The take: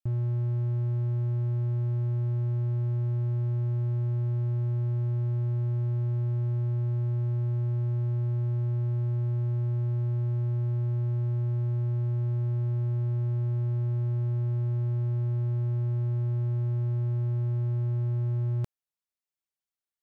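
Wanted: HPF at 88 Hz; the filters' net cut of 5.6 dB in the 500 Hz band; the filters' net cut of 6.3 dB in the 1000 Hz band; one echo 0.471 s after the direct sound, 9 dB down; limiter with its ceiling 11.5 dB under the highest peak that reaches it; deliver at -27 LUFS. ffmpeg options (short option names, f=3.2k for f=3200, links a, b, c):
-af "highpass=88,equalizer=f=500:t=o:g=-9,equalizer=f=1k:t=o:g=-5,alimiter=level_in=13.5dB:limit=-24dB:level=0:latency=1,volume=-13.5dB,aecho=1:1:471:0.355,volume=18dB"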